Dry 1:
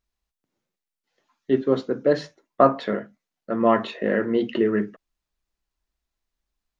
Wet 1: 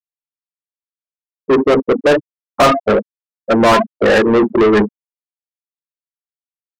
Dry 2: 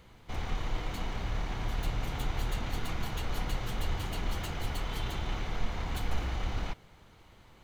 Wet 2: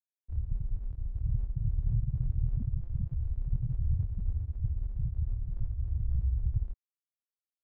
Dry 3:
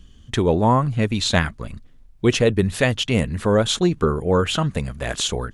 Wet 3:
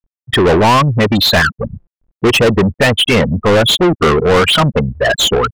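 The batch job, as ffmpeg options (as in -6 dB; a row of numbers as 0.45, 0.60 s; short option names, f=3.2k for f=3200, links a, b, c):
-filter_complex "[0:a]afftfilt=real='re*gte(hypot(re,im),0.126)':imag='im*gte(hypot(re,im),0.126)':win_size=1024:overlap=0.75,asplit=2[a][b];[b]highpass=f=720:p=1,volume=33dB,asoftclip=type=tanh:threshold=-3dB[c];[a][c]amix=inputs=2:normalize=0,lowpass=f=5.2k:p=1,volume=-6dB"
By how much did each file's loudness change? +9.5, +2.0, +9.0 LU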